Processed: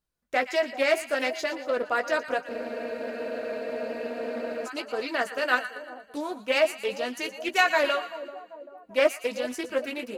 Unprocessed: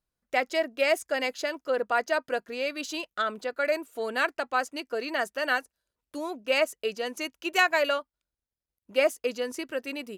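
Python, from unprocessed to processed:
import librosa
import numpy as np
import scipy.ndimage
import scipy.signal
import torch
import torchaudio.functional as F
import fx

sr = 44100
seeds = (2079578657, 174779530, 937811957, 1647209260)

p1 = fx.chorus_voices(x, sr, voices=4, hz=0.37, base_ms=16, depth_ms=4.7, mix_pct=35)
p2 = p1 + fx.echo_split(p1, sr, split_hz=960.0, low_ms=389, high_ms=117, feedback_pct=52, wet_db=-12.5, dry=0)
p3 = fx.spec_freeze(p2, sr, seeds[0], at_s=2.51, hold_s=2.15)
p4 = fx.doppler_dist(p3, sr, depth_ms=0.13)
y = p4 * 10.0 ** (3.5 / 20.0)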